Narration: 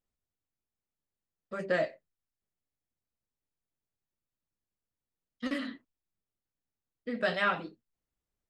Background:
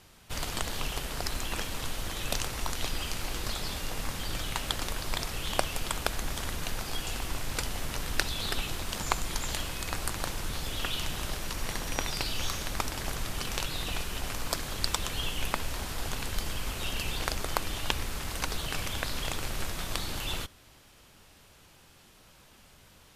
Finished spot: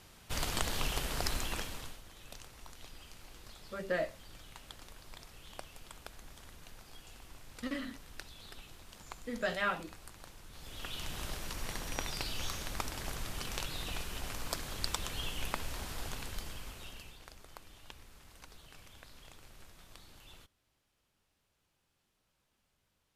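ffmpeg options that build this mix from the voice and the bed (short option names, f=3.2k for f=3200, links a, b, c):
-filter_complex "[0:a]adelay=2200,volume=-4.5dB[a];[1:a]volume=12dB,afade=t=out:st=1.29:d=0.72:silence=0.125893,afade=t=in:st=10.5:d=0.72:silence=0.223872,afade=t=out:st=15.95:d=1.23:silence=0.158489[b];[a][b]amix=inputs=2:normalize=0"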